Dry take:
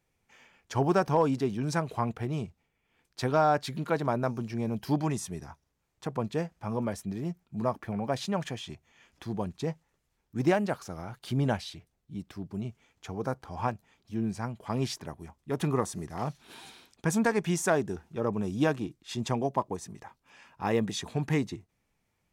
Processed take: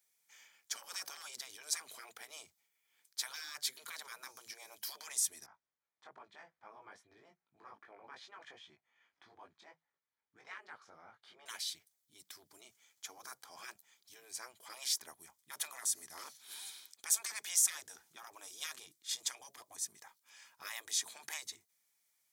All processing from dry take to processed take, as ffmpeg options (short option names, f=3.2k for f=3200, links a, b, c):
-filter_complex "[0:a]asettb=1/sr,asplit=3[a][b][c];[a]atrim=end=5.464[d];[b]atrim=start=5.46:end=11.46,asetpts=PTS-STARTPTS,afade=t=in:d=0.004:c=qsin,afade=t=out:st=5.996:d=0.004:c=qsin,lowpass=1.8k,flanger=delay=18.5:depth=2.2:speed=2.5[e];[c]atrim=start=11.456[f];[d][e]acrossfade=d=0.004:c1=hsin:c2=qsin[g];[g][f]acrossfade=d=0.004:c1=qsin:c2=hsin,bandreject=f=2.7k:w=6.9,afftfilt=real='re*lt(hypot(re,im),0.0708)':imag='im*lt(hypot(re,im),0.0708)':win_size=1024:overlap=0.75,aderivative,volume=7dB"